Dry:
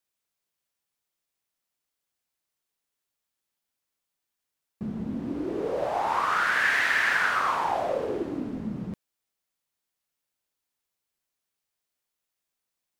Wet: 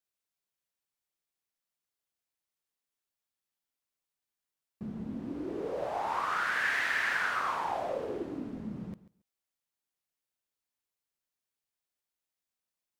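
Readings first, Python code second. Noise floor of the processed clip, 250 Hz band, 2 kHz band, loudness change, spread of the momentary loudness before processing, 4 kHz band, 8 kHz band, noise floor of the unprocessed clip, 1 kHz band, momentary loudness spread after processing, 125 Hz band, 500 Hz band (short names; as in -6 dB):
under -85 dBFS, -6.5 dB, -6.5 dB, -6.5 dB, 14 LU, -6.5 dB, -6.5 dB, -85 dBFS, -6.5 dB, 14 LU, -6.5 dB, -6.5 dB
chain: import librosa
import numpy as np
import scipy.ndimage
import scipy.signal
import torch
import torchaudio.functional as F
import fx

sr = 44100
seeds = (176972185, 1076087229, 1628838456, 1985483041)

y = fx.echo_feedback(x, sr, ms=139, feedback_pct=16, wet_db=-17)
y = F.gain(torch.from_numpy(y), -6.5).numpy()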